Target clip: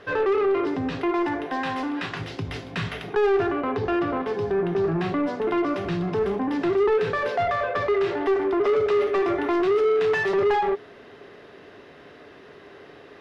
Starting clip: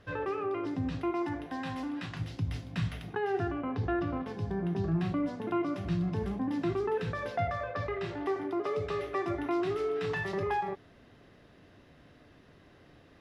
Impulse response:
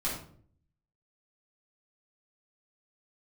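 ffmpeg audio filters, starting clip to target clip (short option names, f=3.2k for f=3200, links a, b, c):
-filter_complex "[0:a]equalizer=f=410:w=5.2:g=11,asplit=2[a][b];[b]highpass=f=720:p=1,volume=21dB,asoftclip=type=tanh:threshold=-14dB[c];[a][c]amix=inputs=2:normalize=0,lowpass=f=2.6k:p=1,volume=-6dB"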